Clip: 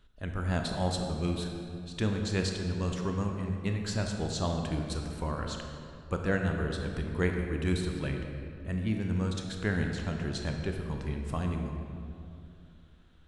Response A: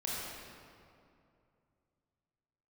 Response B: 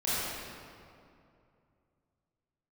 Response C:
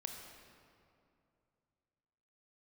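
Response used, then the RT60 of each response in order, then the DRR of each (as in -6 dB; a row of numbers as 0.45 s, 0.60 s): C; 2.6 s, 2.5 s, 2.6 s; -6.5 dB, -11.5 dB, 2.5 dB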